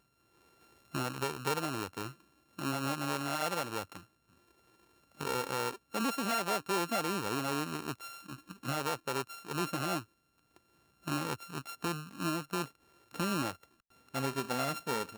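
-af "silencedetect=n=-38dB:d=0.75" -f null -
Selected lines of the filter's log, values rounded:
silence_start: 0.00
silence_end: 0.94 | silence_duration: 0.94
silence_start: 3.97
silence_end: 5.21 | silence_duration: 1.23
silence_start: 10.01
silence_end: 11.07 | silence_duration: 1.06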